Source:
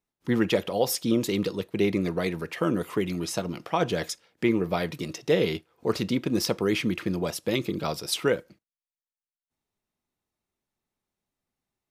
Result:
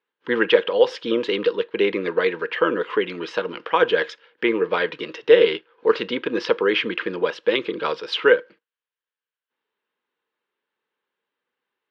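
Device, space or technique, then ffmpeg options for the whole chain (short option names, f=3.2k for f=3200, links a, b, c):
phone earpiece: -af "highpass=400,equalizer=f=470:t=q:w=4:g=10,equalizer=f=690:t=q:w=4:g=-10,equalizer=f=1k:t=q:w=4:g=5,equalizer=f=1.6k:t=q:w=4:g=10,equalizer=f=3k:t=q:w=4:g=6,lowpass=f=3.7k:w=0.5412,lowpass=f=3.7k:w=1.3066,volume=5dB"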